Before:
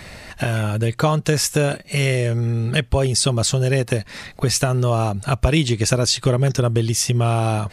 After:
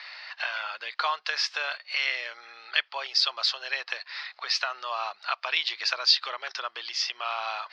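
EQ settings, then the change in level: HPF 980 Hz 24 dB/oct; synth low-pass 4800 Hz, resonance Q 5; air absorption 300 m; 0.0 dB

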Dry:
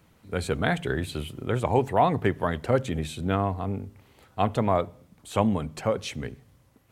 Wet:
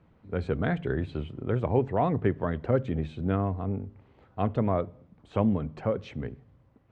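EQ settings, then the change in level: LPF 1100 Hz 6 dB/oct; dynamic EQ 840 Hz, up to -6 dB, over -39 dBFS, Q 2; air absorption 110 m; 0.0 dB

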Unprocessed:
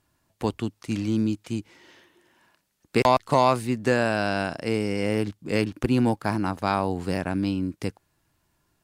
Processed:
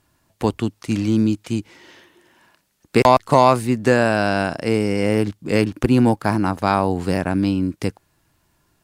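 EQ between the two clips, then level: dynamic EQ 3500 Hz, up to -3 dB, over -40 dBFS, Q 0.82; +6.5 dB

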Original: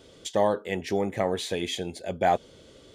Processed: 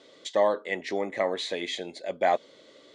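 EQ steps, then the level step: speaker cabinet 250–8200 Hz, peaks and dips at 290 Hz +4 dB, 590 Hz +7 dB, 1100 Hz +7 dB, 2000 Hz +10 dB, 4000 Hz +8 dB; -4.5 dB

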